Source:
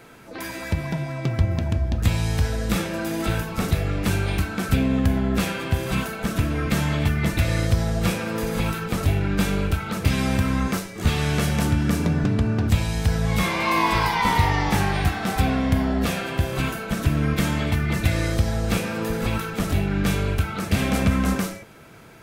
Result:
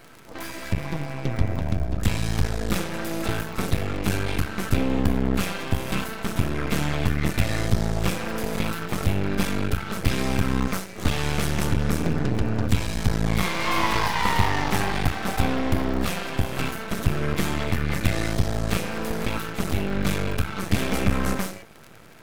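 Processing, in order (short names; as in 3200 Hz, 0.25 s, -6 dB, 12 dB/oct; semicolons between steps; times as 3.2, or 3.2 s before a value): crackle 62/s -33 dBFS; half-wave rectifier; gain +2 dB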